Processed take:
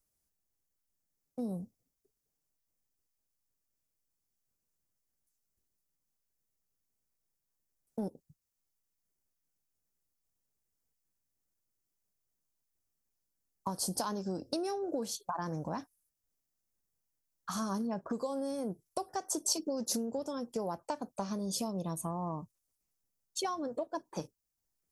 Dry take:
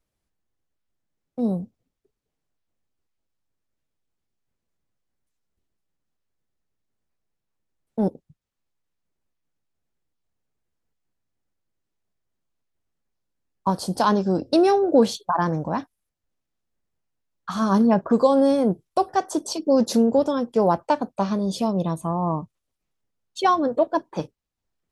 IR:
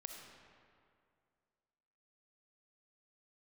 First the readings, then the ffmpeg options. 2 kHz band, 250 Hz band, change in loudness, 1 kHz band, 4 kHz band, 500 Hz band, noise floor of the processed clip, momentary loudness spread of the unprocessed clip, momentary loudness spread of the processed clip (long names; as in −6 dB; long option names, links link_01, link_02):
−15.5 dB, −16.0 dB, −15.0 dB, −16.0 dB, −7.5 dB, −17.0 dB, −85 dBFS, 12 LU, 9 LU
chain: -af "acompressor=threshold=-25dB:ratio=6,aexciter=amount=4.2:drive=4.8:freq=5000,volume=-8dB"